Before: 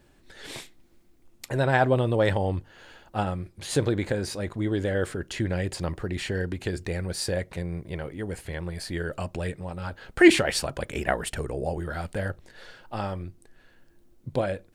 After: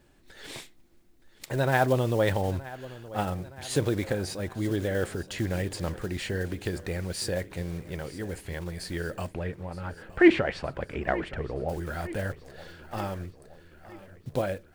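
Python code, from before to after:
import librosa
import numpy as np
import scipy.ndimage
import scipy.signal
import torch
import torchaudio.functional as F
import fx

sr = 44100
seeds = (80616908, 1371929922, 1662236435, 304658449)

y = fx.block_float(x, sr, bits=5)
y = fx.lowpass(y, sr, hz=2300.0, slope=12, at=(9.31, 11.68), fade=0.02)
y = fx.echo_feedback(y, sr, ms=920, feedback_pct=56, wet_db=-17.5)
y = F.gain(torch.from_numpy(y), -2.0).numpy()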